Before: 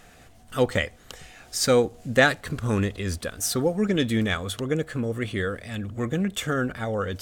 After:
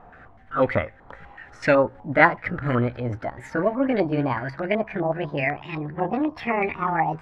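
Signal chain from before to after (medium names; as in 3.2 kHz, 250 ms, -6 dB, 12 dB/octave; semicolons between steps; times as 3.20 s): pitch bend over the whole clip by +8.5 st starting unshifted; step-sequenced low-pass 8 Hz 970–2100 Hz; trim +1.5 dB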